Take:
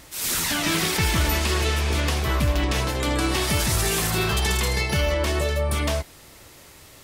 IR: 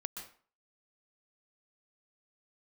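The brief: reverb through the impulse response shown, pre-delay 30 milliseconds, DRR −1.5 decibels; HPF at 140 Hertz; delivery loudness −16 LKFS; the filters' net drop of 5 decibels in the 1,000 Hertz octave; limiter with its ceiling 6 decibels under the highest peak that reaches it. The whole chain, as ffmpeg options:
-filter_complex "[0:a]highpass=140,equalizer=frequency=1000:width_type=o:gain=-6.5,alimiter=limit=-18dB:level=0:latency=1,asplit=2[link_01][link_02];[1:a]atrim=start_sample=2205,adelay=30[link_03];[link_02][link_03]afir=irnorm=-1:irlink=0,volume=2.5dB[link_04];[link_01][link_04]amix=inputs=2:normalize=0,volume=7dB"

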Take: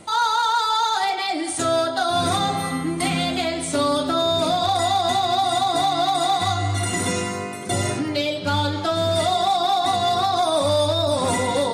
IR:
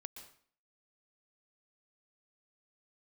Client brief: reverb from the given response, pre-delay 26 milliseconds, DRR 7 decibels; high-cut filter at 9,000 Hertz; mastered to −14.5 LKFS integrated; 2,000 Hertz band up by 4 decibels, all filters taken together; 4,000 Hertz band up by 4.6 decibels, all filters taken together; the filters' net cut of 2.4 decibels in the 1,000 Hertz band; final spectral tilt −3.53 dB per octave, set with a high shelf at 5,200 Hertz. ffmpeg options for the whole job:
-filter_complex "[0:a]lowpass=9000,equalizer=frequency=1000:width_type=o:gain=-5,equalizer=frequency=2000:width_type=o:gain=6,equalizer=frequency=4000:width_type=o:gain=7,highshelf=frequency=5200:gain=-8.5,asplit=2[link_01][link_02];[1:a]atrim=start_sample=2205,adelay=26[link_03];[link_02][link_03]afir=irnorm=-1:irlink=0,volume=-2.5dB[link_04];[link_01][link_04]amix=inputs=2:normalize=0,volume=5dB"

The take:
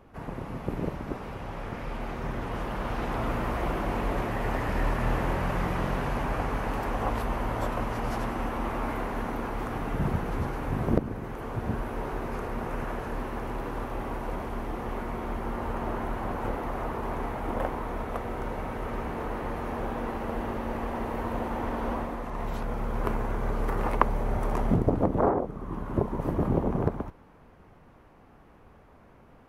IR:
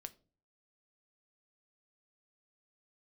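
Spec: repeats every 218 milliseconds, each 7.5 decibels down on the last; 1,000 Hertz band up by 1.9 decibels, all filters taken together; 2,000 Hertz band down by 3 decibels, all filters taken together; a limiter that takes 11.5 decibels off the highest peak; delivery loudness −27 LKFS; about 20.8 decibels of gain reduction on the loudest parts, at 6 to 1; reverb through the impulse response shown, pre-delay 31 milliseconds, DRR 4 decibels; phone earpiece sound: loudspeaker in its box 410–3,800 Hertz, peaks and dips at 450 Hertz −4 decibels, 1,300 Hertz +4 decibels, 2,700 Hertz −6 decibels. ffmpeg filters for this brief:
-filter_complex "[0:a]equalizer=frequency=1000:width_type=o:gain=3,equalizer=frequency=2000:width_type=o:gain=-6,acompressor=threshold=-38dB:ratio=6,alimiter=level_in=9dB:limit=-24dB:level=0:latency=1,volume=-9dB,aecho=1:1:218|436|654|872|1090:0.422|0.177|0.0744|0.0312|0.0131,asplit=2[link_01][link_02];[1:a]atrim=start_sample=2205,adelay=31[link_03];[link_02][link_03]afir=irnorm=-1:irlink=0,volume=1.5dB[link_04];[link_01][link_04]amix=inputs=2:normalize=0,highpass=410,equalizer=frequency=450:width_type=q:width=4:gain=-4,equalizer=frequency=1300:width_type=q:width=4:gain=4,equalizer=frequency=2700:width_type=q:width=4:gain=-6,lowpass=frequency=3800:width=0.5412,lowpass=frequency=3800:width=1.3066,volume=17dB"

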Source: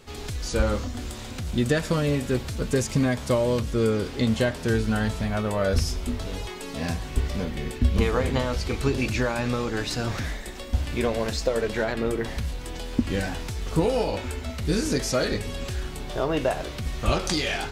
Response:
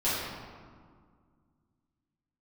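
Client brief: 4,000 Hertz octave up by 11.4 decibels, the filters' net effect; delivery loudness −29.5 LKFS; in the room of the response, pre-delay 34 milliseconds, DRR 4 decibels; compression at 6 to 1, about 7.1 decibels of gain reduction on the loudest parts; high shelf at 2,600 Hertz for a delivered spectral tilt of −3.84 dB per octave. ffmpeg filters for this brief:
-filter_complex "[0:a]highshelf=frequency=2600:gain=7,equalizer=frequency=4000:width_type=o:gain=8,acompressor=threshold=-23dB:ratio=6,asplit=2[link_01][link_02];[1:a]atrim=start_sample=2205,adelay=34[link_03];[link_02][link_03]afir=irnorm=-1:irlink=0,volume=-15dB[link_04];[link_01][link_04]amix=inputs=2:normalize=0,volume=-3.5dB"

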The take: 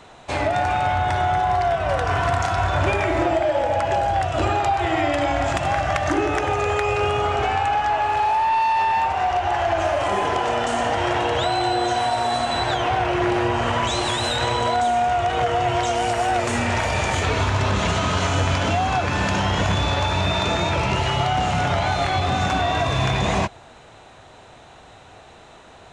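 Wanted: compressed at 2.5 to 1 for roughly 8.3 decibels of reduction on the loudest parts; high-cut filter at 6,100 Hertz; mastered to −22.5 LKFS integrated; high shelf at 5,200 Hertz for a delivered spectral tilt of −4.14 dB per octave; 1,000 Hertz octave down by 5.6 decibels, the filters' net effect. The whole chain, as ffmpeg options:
ffmpeg -i in.wav -af "lowpass=6100,equalizer=frequency=1000:width_type=o:gain=-8,highshelf=frequency=5200:gain=-7,acompressor=threshold=-31dB:ratio=2.5,volume=8.5dB" out.wav

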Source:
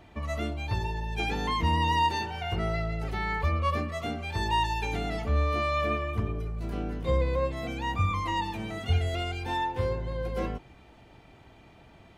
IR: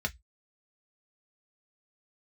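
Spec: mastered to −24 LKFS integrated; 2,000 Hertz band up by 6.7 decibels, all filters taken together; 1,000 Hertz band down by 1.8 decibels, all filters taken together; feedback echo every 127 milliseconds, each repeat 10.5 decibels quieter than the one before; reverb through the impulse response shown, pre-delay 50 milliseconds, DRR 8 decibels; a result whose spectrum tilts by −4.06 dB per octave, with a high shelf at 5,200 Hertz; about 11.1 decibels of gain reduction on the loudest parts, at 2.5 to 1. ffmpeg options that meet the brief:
-filter_complex "[0:a]equalizer=frequency=1000:width_type=o:gain=-4,equalizer=frequency=2000:width_type=o:gain=8,highshelf=frequency=5200:gain=4.5,acompressor=threshold=-38dB:ratio=2.5,aecho=1:1:127|254|381:0.299|0.0896|0.0269,asplit=2[link_01][link_02];[1:a]atrim=start_sample=2205,adelay=50[link_03];[link_02][link_03]afir=irnorm=-1:irlink=0,volume=-13dB[link_04];[link_01][link_04]amix=inputs=2:normalize=0,volume=10dB"

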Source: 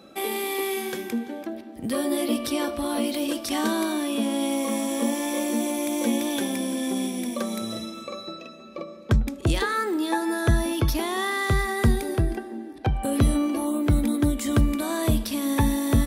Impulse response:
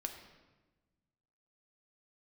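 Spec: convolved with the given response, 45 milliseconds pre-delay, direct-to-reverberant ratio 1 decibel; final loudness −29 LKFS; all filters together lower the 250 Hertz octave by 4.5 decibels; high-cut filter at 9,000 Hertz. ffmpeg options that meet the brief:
-filter_complex "[0:a]lowpass=9000,equalizer=frequency=250:width_type=o:gain=-5.5,asplit=2[link_01][link_02];[1:a]atrim=start_sample=2205,adelay=45[link_03];[link_02][link_03]afir=irnorm=-1:irlink=0,volume=0dB[link_04];[link_01][link_04]amix=inputs=2:normalize=0,volume=-3.5dB"

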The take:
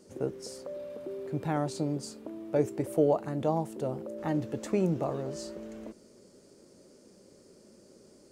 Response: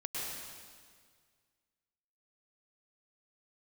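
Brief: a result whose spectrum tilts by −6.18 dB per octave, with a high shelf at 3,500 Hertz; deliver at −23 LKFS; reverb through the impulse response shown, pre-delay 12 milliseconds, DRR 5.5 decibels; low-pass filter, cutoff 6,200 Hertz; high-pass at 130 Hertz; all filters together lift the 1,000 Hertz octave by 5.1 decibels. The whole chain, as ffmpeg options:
-filter_complex "[0:a]highpass=130,lowpass=6200,equalizer=frequency=1000:width_type=o:gain=6.5,highshelf=frequency=3500:gain=8,asplit=2[link_01][link_02];[1:a]atrim=start_sample=2205,adelay=12[link_03];[link_02][link_03]afir=irnorm=-1:irlink=0,volume=-8.5dB[link_04];[link_01][link_04]amix=inputs=2:normalize=0,volume=7.5dB"

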